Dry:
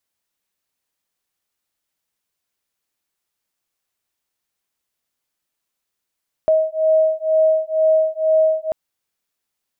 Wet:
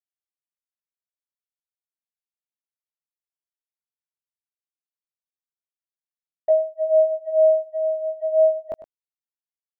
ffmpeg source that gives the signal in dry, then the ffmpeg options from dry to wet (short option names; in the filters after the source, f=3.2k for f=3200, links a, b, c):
-f lavfi -i "aevalsrc='0.15*(sin(2*PI*632*t)+sin(2*PI*634.1*t))':d=2.24:s=44100"
-af "agate=range=-28dB:threshold=-21dB:ratio=16:detection=peak,flanger=delay=17:depth=7.7:speed=0.32,aecho=1:1:101:0.211"